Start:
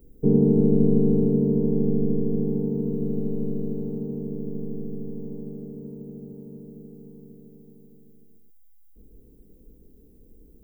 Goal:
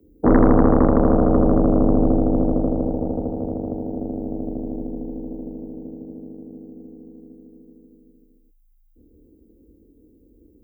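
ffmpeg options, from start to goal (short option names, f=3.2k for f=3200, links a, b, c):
-af "equalizer=f=280:w=1.1:g=14.5,aeval=exprs='1.41*(cos(1*acos(clip(val(0)/1.41,-1,1)))-cos(1*PI/2))+0.398*(cos(6*acos(clip(val(0)/1.41,-1,1)))-cos(6*PI/2))':c=same,afreqshift=27,volume=-8dB"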